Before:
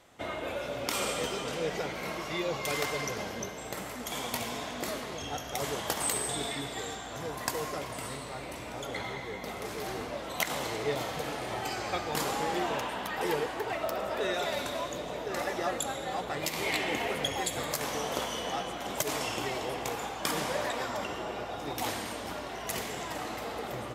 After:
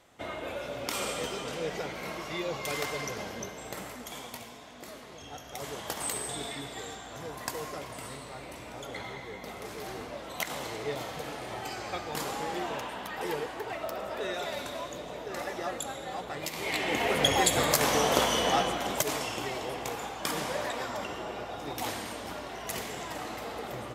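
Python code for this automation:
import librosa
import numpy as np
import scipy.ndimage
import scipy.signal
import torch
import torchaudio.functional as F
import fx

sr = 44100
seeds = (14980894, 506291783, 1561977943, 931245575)

y = fx.gain(x, sr, db=fx.line((3.85, -1.5), (4.59, -12.0), (6.05, -3.0), (16.6, -3.0), (17.31, 8.0), (18.61, 8.0), (19.26, -1.0)))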